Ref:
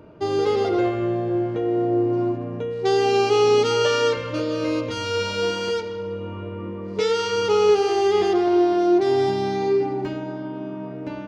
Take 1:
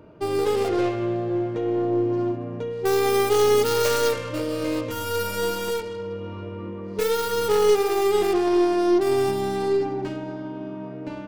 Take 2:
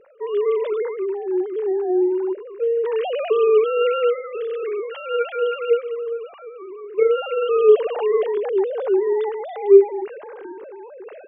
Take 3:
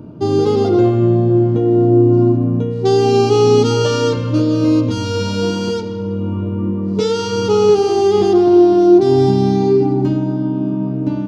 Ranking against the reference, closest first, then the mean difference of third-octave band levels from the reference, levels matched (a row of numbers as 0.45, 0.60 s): 1, 3, 2; 3.0, 5.0, 14.5 dB